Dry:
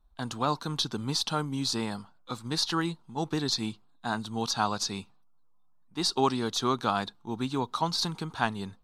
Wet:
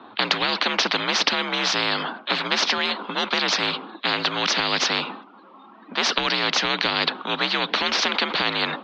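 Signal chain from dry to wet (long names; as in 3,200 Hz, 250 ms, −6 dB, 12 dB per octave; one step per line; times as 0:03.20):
single-sideband voice off tune +55 Hz 170–3,400 Hz
boost into a limiter +19.5 dB
every bin compressed towards the loudest bin 10 to 1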